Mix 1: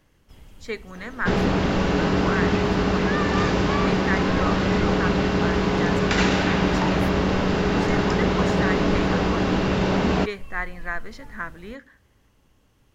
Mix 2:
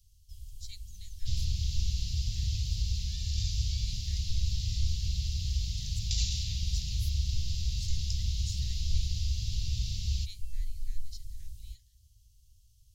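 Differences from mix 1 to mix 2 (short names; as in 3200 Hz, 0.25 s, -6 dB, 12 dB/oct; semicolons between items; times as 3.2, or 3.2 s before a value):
first sound +3.0 dB; master: add inverse Chebyshev band-stop 270–1500 Hz, stop band 60 dB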